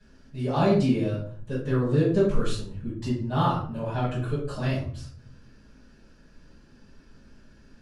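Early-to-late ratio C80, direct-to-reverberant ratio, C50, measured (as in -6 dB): 9.0 dB, -11.0 dB, 4.0 dB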